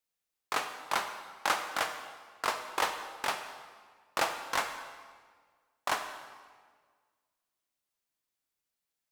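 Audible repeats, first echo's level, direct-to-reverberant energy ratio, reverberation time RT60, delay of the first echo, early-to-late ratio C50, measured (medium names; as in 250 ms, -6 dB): no echo, no echo, 7.0 dB, 1.7 s, no echo, 7.5 dB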